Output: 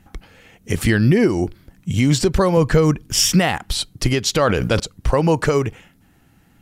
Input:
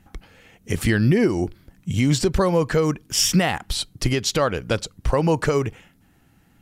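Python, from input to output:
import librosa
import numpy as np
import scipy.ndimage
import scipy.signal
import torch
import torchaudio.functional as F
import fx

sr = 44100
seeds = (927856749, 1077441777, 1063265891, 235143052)

y = fx.low_shelf(x, sr, hz=130.0, db=11.0, at=(2.57, 3.2))
y = fx.sustainer(y, sr, db_per_s=34.0, at=(4.36, 4.8))
y = y * librosa.db_to_amplitude(3.0)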